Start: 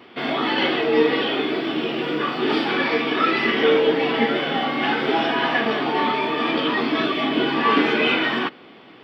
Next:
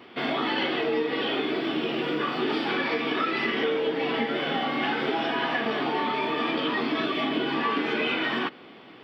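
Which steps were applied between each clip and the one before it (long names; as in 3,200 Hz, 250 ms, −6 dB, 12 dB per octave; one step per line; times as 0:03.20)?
downward compressor, threshold −21 dBFS, peak gain reduction 9 dB
level −2 dB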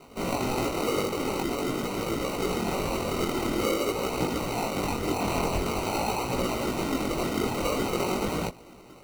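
random phases in short frames
decimation without filtering 26×
multi-voice chorus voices 2, 0.47 Hz, delay 20 ms, depth 4 ms
level +1.5 dB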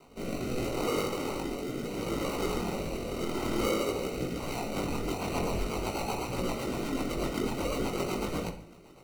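rotating-speaker cabinet horn 0.75 Hz, later 8 Hz, at 0:04.22
on a send at −8 dB: convolution reverb RT60 0.50 s, pre-delay 37 ms
on the sum: level −3 dB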